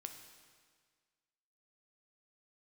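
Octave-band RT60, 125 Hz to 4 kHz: 1.7 s, 1.7 s, 1.7 s, 1.7 s, 1.7 s, 1.6 s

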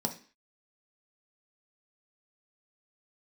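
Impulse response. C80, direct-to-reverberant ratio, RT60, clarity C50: 18.0 dB, 3.0 dB, 0.40 s, 12.5 dB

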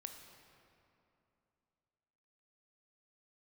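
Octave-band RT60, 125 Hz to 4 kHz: 3.0 s, 3.1 s, 2.9 s, 2.8 s, 2.3 s, 1.7 s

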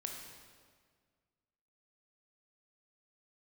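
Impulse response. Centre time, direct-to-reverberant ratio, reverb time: 59 ms, 1.0 dB, 1.8 s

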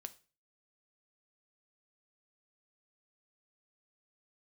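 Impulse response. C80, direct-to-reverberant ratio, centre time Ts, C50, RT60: 23.5 dB, 10.0 dB, 3 ms, 18.5 dB, 0.35 s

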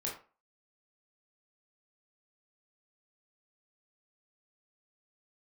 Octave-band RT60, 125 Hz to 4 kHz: 0.30 s, 0.35 s, 0.35 s, 0.35 s, 0.30 s, 0.25 s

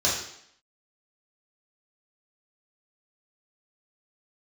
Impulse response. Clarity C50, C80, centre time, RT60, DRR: 3.0 dB, 6.5 dB, 46 ms, 0.70 s, -7.0 dB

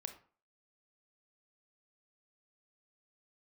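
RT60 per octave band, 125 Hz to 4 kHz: 0.40 s, 0.40 s, 0.40 s, 0.45 s, 0.35 s, 0.25 s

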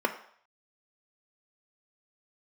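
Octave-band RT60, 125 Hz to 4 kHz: 0.35 s, 0.45 s, 0.55 s, 0.65 s, 0.60 s, 0.60 s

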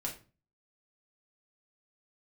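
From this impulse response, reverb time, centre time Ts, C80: 0.35 s, 19 ms, 15.0 dB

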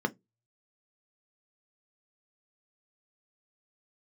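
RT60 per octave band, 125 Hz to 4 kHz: 0.40 s, 0.25 s, 0.20 s, 0.15 s, 0.10 s, 0.15 s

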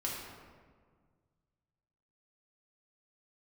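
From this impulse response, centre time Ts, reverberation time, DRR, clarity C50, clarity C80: 83 ms, 1.7 s, -4.5 dB, 0.5 dB, 2.5 dB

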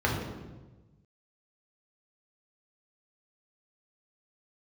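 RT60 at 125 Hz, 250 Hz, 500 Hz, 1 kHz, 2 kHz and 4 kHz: 1.7 s, 1.4 s, 1.3 s, 1.1 s, 0.95 s, 0.85 s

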